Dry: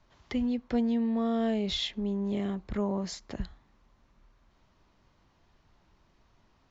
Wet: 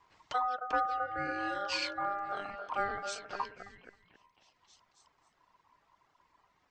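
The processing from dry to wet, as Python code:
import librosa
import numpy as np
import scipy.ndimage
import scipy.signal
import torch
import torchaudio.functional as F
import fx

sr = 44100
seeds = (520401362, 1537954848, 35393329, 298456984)

y = fx.dereverb_blind(x, sr, rt60_s=1.9)
y = fx.echo_stepped(y, sr, ms=268, hz=380.0, octaves=0.7, feedback_pct=70, wet_db=-3.5)
y = y * np.sin(2.0 * np.pi * 1000.0 * np.arange(len(y)) / sr)
y = y * librosa.db_to_amplitude(1.0)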